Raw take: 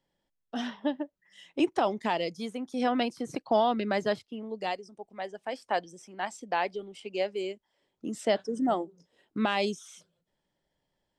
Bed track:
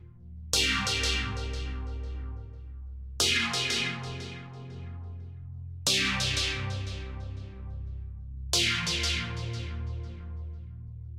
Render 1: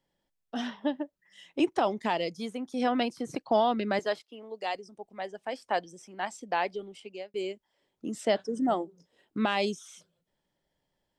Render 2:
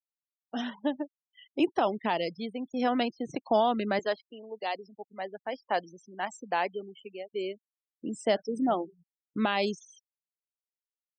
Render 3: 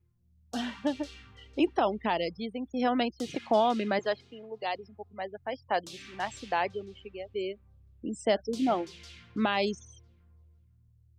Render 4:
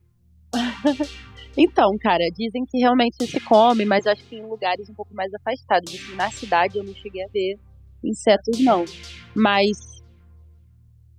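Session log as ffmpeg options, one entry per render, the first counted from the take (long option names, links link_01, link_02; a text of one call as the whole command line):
ffmpeg -i in.wav -filter_complex "[0:a]asettb=1/sr,asplit=3[link_01][link_02][link_03];[link_01]atrim=end=3.994[link_04];[link_02]atrim=start=3.99:end=4.75,asetpts=PTS-STARTPTS,afade=type=in:duration=0.004:curve=qsin,afade=type=out:start_time=0.756:duration=0.004:curve=qsin,highpass=420[link_05];[link_03]atrim=start=4.746[link_06];[link_04][link_05]acrossfade=duration=0.004:curve1=hsin:curve2=qsin[link_07];[link_07][link_06]acrossfade=duration=0.004:curve1=qsin:curve2=hsin,asplit=2[link_08][link_09];[link_08]atrim=end=7.34,asetpts=PTS-STARTPTS,afade=type=out:start_time=6.89:duration=0.45[link_10];[link_09]atrim=start=7.34,asetpts=PTS-STARTPTS,afade=type=in:duration=0.004:curve=hsin[link_11];[link_10][link_11]concat=n=2:v=0:a=1" out.wav
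ffmpeg -i in.wav -af "afftfilt=real='re*gte(hypot(re,im),0.00794)':imag='im*gte(hypot(re,im),0.00794)':win_size=1024:overlap=0.75" out.wav
ffmpeg -i in.wav -i bed.wav -filter_complex "[1:a]volume=-21dB[link_01];[0:a][link_01]amix=inputs=2:normalize=0" out.wav
ffmpeg -i in.wav -af "volume=10.5dB" out.wav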